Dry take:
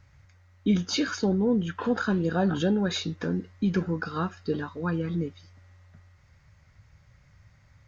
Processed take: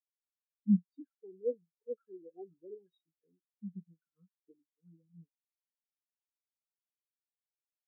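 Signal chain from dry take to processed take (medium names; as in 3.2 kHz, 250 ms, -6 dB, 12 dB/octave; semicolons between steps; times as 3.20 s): 1.09–3.49 s: comb 2.4 ms, depth 55%; flange 1.1 Hz, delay 2.3 ms, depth 8 ms, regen +72%; spectral contrast expander 4:1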